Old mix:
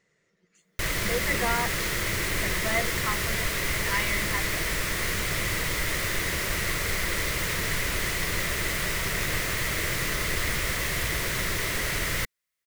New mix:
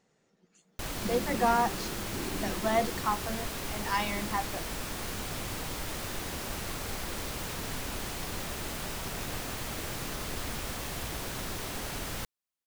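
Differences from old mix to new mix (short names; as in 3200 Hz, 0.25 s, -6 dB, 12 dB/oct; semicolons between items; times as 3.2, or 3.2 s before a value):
background -8.0 dB; master: add thirty-one-band EQ 250 Hz +12 dB, 800 Hz +12 dB, 2000 Hz -11 dB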